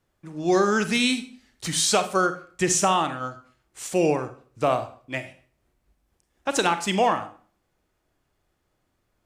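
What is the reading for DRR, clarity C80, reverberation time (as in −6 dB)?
9.5 dB, 16.5 dB, 0.45 s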